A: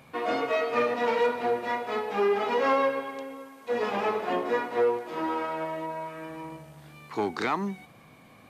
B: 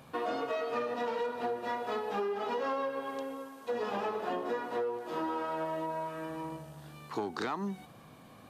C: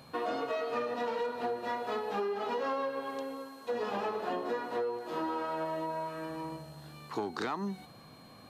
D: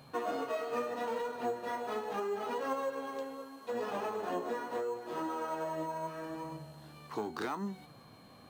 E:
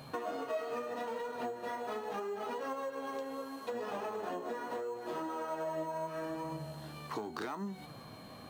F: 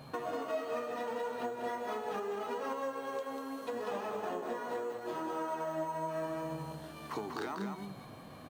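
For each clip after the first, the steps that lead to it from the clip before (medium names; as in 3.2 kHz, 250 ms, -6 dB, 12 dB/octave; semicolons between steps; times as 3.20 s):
peaking EQ 2.2 kHz -9.5 dB 0.31 oct; compression, threshold -31 dBFS, peak gain reduction 11 dB
whistle 4.2 kHz -60 dBFS
flange 0.76 Hz, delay 6.5 ms, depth 7.4 ms, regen +58%; in parallel at -10.5 dB: sample-rate reducer 7.3 kHz, jitter 0%
compression 6:1, threshold -42 dBFS, peak gain reduction 11.5 dB; feedback comb 630 Hz, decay 0.27 s, harmonics odd, mix 60%; trim +13.5 dB
delay 193 ms -5 dB; tape noise reduction on one side only decoder only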